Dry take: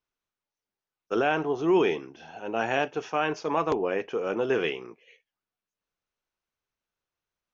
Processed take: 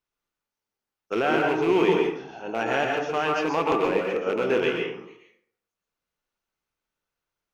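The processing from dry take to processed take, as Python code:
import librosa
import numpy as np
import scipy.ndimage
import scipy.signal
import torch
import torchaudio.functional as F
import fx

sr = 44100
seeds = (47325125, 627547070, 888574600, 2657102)

y = fx.rattle_buzz(x, sr, strikes_db=-35.0, level_db=-25.0)
y = fx.rev_plate(y, sr, seeds[0], rt60_s=0.62, hf_ratio=0.55, predelay_ms=110, drr_db=0.0)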